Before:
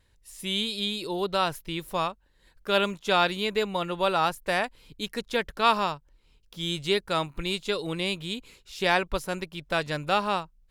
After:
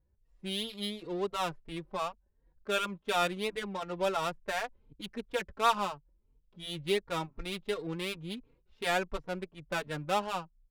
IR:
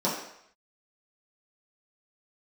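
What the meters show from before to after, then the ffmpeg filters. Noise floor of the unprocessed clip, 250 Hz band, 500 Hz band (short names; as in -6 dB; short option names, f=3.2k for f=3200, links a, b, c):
-64 dBFS, -6.5 dB, -6.0 dB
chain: -filter_complex "[0:a]adynamicsmooth=sensitivity=3.5:basefreq=690,asplit=2[a][b];[b]adelay=3.7,afreqshift=2.8[c];[a][c]amix=inputs=2:normalize=1,volume=-3.5dB"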